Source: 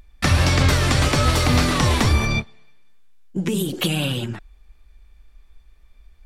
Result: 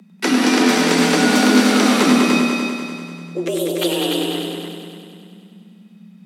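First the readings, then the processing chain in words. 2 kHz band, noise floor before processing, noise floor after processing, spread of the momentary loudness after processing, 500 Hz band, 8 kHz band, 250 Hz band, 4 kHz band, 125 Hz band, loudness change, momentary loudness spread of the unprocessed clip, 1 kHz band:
+4.5 dB, -52 dBFS, -46 dBFS, 16 LU, +7.0 dB, +3.5 dB, +9.5 dB, +3.5 dB, -11.0 dB, +3.5 dB, 10 LU, +4.0 dB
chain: multi-head delay 98 ms, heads all three, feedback 54%, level -7 dB; frequency shift +170 Hz

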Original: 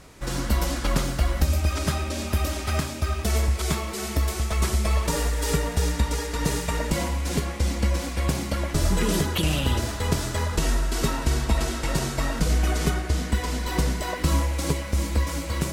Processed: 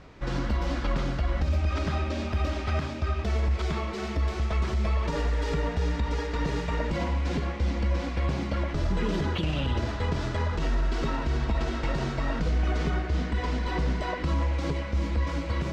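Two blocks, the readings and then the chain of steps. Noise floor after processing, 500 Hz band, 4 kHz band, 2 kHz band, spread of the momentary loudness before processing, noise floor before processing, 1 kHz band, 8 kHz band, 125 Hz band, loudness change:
-33 dBFS, -2.5 dB, -7.5 dB, -3.5 dB, 4 LU, -32 dBFS, -2.5 dB, -18.0 dB, -2.5 dB, -3.5 dB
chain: peak limiter -17.5 dBFS, peak gain reduction 8 dB; distance through air 200 m

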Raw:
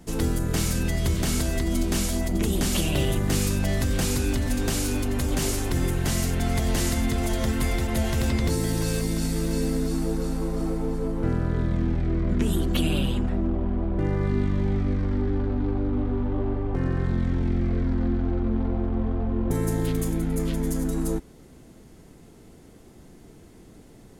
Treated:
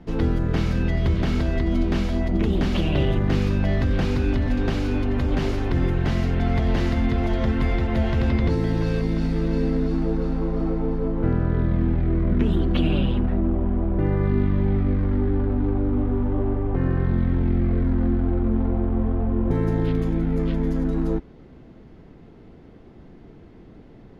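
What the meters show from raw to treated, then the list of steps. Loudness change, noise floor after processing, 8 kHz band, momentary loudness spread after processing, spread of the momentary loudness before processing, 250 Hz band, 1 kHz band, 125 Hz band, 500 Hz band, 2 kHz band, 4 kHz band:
+2.5 dB, -46 dBFS, under -20 dB, 3 LU, 3 LU, +3.0 dB, +2.0 dB, +3.5 dB, +3.0 dB, +0.5 dB, -4.0 dB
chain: distance through air 300 m; trim +3.5 dB

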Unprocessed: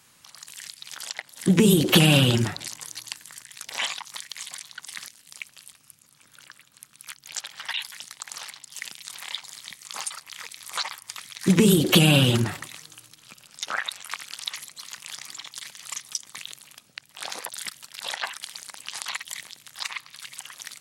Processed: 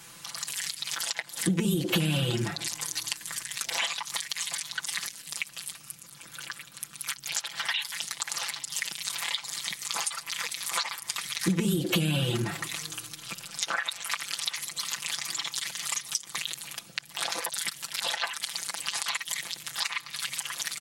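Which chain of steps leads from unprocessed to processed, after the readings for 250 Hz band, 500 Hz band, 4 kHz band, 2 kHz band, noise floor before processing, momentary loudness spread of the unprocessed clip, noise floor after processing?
-8.5 dB, -9.0 dB, -2.5 dB, -1.5 dB, -58 dBFS, 22 LU, -50 dBFS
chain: comb 5.9 ms, depth 83%; compression 4:1, threshold -35 dBFS, peak gain reduction 22 dB; trim +7 dB

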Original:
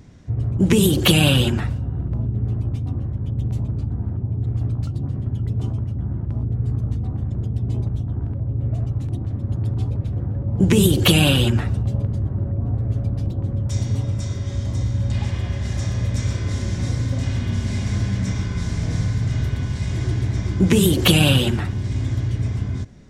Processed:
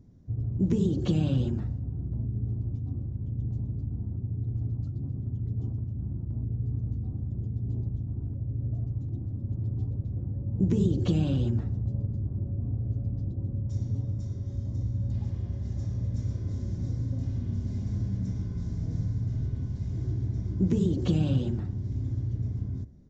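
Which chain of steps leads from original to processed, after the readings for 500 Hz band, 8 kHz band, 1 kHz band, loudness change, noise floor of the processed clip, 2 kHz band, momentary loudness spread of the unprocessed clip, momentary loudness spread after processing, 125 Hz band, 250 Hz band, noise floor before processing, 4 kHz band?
-12.5 dB, under -25 dB, under -15 dB, -9.0 dB, -37 dBFS, under -25 dB, 11 LU, 8 LU, -8.0 dB, -8.5 dB, -28 dBFS, under -25 dB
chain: de-hum 72.63 Hz, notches 28; resampled via 16 kHz; FFT filter 280 Hz 0 dB, 2.6 kHz -21 dB, 4.9 kHz -13 dB; trim -8 dB

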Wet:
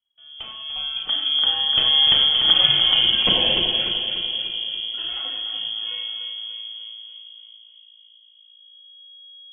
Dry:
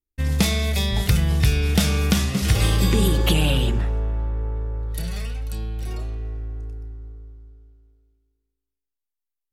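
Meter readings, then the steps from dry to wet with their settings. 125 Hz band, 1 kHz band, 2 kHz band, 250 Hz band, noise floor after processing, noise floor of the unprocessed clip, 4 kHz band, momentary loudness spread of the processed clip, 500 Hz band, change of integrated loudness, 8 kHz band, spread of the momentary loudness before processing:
-22.0 dB, -0.5 dB, 0.0 dB, -14.0 dB, -52 dBFS, -84 dBFS, +14.5 dB, 18 LU, -6.5 dB, +4.5 dB, under -40 dB, 14 LU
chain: fade-in on the opening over 2.75 s; reverb removal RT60 0.86 s; upward compressor, threshold -44 dBFS; spectral noise reduction 7 dB; on a send: two-band feedback delay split 430 Hz, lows 616 ms, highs 295 ms, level -7 dB; on the sum: Schroeder reverb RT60 0.85 s, combs from 28 ms, DRR 2 dB; frequency inversion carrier 3.3 kHz

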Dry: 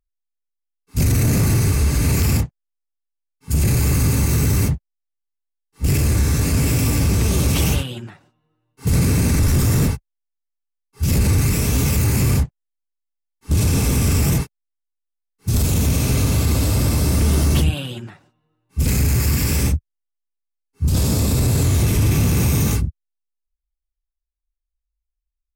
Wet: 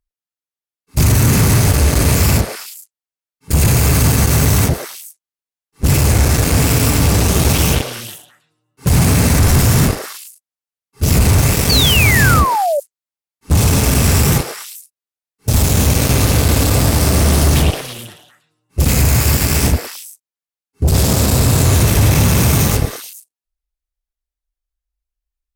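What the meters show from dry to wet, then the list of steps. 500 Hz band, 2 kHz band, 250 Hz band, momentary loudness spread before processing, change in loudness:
+8.0 dB, +10.5 dB, +4.0 dB, 8 LU, +5.5 dB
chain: Chebyshev shaper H 7 -12 dB, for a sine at -9 dBFS; repeats whose band climbs or falls 108 ms, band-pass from 580 Hz, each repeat 1.4 oct, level -2 dB; painted sound fall, 11.69–12.80 s, 550–4700 Hz -18 dBFS; trim +3 dB

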